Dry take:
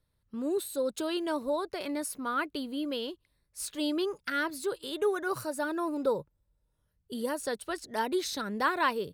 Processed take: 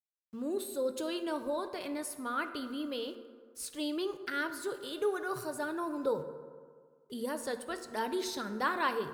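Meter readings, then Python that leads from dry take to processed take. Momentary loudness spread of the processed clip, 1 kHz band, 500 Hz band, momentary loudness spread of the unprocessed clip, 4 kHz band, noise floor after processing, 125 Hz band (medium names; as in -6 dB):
9 LU, -3.5 dB, -3.0 dB, 7 LU, -4.0 dB, -65 dBFS, -2.5 dB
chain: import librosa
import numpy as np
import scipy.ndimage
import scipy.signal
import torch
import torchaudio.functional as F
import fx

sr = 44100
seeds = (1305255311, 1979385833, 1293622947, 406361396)

y = np.where(np.abs(x) >= 10.0 ** (-55.0 / 20.0), x, 0.0)
y = fx.rev_fdn(y, sr, rt60_s=1.8, lf_ratio=0.95, hf_ratio=0.45, size_ms=39.0, drr_db=7.5)
y = y * 10.0 ** (-4.0 / 20.0)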